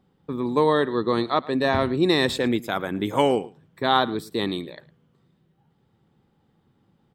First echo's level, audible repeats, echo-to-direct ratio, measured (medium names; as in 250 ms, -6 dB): -21.0 dB, 1, -21.0 dB